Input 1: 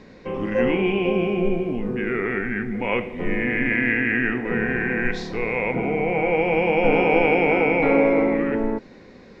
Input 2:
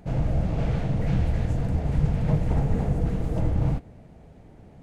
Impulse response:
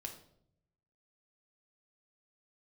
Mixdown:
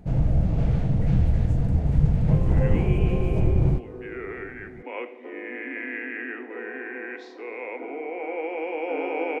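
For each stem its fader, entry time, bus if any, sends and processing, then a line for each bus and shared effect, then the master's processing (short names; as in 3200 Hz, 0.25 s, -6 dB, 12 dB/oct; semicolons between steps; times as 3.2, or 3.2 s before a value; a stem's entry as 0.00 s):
-9.0 dB, 2.05 s, no send, steep high-pass 260 Hz 72 dB/oct; high shelf 3200 Hz -8.5 dB
-4.5 dB, 0.00 s, no send, low shelf 340 Hz +8.5 dB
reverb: off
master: dry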